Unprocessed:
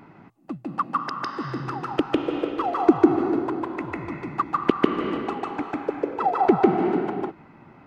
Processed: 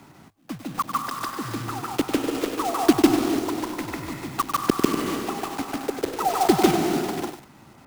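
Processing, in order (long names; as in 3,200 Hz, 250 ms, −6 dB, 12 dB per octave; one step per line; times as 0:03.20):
one scale factor per block 3 bits
frequency shifter −17 Hz
feedback echo at a low word length 97 ms, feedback 35%, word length 6 bits, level −9 dB
level −1 dB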